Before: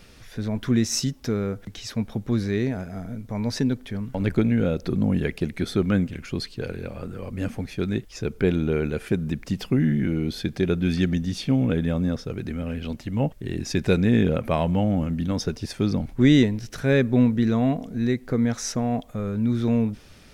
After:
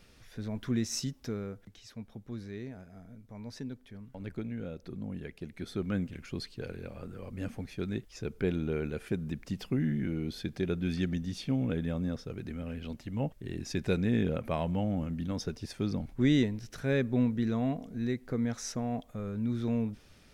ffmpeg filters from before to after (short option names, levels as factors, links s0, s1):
-af "volume=0.841,afade=t=out:st=1.18:d=0.61:silence=0.421697,afade=t=in:st=5.37:d=0.79:silence=0.398107"